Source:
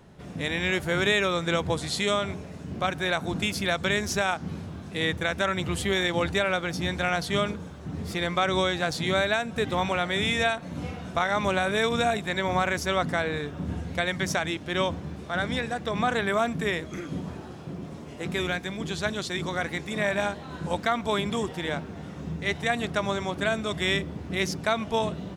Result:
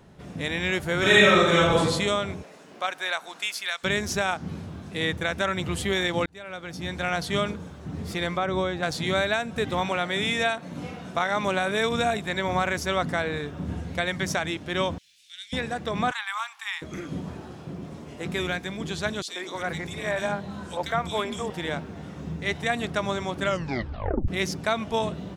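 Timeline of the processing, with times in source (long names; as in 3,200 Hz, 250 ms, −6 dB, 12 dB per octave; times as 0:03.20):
0:00.99–0:01.79: thrown reverb, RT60 0.99 s, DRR −6.5 dB
0:02.42–0:03.83: high-pass filter 400 Hz → 1,500 Hz
0:06.26–0:07.20: fade in
0:08.37–0:08.83: high-shelf EQ 2,100 Hz −12 dB
0:09.82–0:11.81: high-pass filter 130 Hz
0:14.98–0:15.53: inverse Chebyshev high-pass filter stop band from 1,100 Hz, stop band 50 dB
0:16.11–0:16.82: Chebyshev high-pass with heavy ripple 800 Hz, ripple 3 dB
0:19.22–0:21.50: three-band delay without the direct sound highs, mids, lows 60/330 ms, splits 290/2,300 Hz
0:23.41: tape stop 0.87 s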